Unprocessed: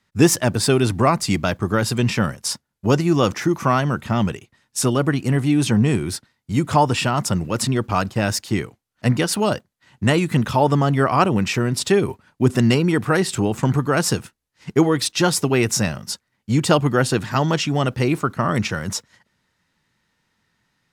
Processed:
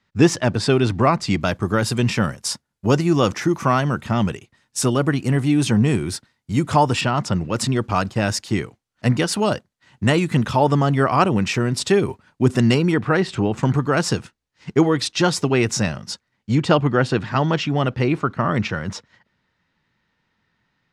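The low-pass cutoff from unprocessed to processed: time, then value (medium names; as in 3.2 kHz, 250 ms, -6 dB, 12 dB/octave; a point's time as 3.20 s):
5.1 kHz
from 1.41 s 11 kHz
from 7.01 s 4.9 kHz
from 7.53 s 9.2 kHz
from 12.94 s 3.8 kHz
from 13.57 s 6.5 kHz
from 16.55 s 3.9 kHz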